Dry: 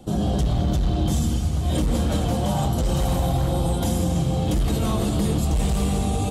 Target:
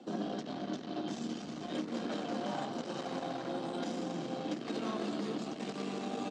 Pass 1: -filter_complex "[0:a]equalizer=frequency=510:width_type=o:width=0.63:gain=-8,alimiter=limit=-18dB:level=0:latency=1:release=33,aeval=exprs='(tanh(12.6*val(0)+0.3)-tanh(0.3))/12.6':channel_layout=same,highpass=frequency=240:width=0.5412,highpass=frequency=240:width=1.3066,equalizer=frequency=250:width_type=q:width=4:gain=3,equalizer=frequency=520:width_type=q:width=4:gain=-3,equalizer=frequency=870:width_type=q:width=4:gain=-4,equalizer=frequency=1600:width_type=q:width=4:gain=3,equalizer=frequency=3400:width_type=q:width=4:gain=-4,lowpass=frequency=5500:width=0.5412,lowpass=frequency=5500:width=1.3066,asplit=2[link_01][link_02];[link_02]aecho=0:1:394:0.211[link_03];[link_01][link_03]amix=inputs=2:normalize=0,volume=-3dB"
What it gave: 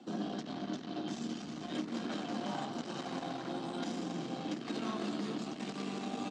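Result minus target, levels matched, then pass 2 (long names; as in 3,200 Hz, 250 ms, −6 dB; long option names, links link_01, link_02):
500 Hz band −2.5 dB
-filter_complex "[0:a]alimiter=limit=-18dB:level=0:latency=1:release=33,aeval=exprs='(tanh(12.6*val(0)+0.3)-tanh(0.3))/12.6':channel_layout=same,highpass=frequency=240:width=0.5412,highpass=frequency=240:width=1.3066,equalizer=frequency=250:width_type=q:width=4:gain=3,equalizer=frequency=520:width_type=q:width=4:gain=-3,equalizer=frequency=870:width_type=q:width=4:gain=-4,equalizer=frequency=1600:width_type=q:width=4:gain=3,equalizer=frequency=3400:width_type=q:width=4:gain=-4,lowpass=frequency=5500:width=0.5412,lowpass=frequency=5500:width=1.3066,asplit=2[link_01][link_02];[link_02]aecho=0:1:394:0.211[link_03];[link_01][link_03]amix=inputs=2:normalize=0,volume=-3dB"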